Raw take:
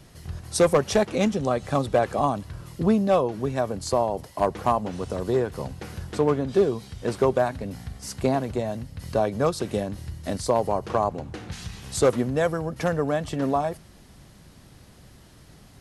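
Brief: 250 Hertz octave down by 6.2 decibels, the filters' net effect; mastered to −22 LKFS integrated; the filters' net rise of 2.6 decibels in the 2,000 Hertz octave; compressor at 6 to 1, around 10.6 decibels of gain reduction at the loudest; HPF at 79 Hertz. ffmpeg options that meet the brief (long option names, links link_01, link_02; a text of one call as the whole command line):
ffmpeg -i in.wav -af "highpass=79,equalizer=frequency=250:width_type=o:gain=-8.5,equalizer=frequency=2000:width_type=o:gain=3.5,acompressor=threshold=-28dB:ratio=6,volume=12dB" out.wav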